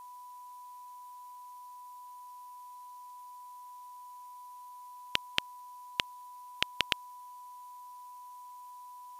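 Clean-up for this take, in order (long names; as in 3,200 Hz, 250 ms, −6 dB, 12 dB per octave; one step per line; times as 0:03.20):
notch filter 990 Hz, Q 30
broadband denoise 30 dB, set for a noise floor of −49 dBFS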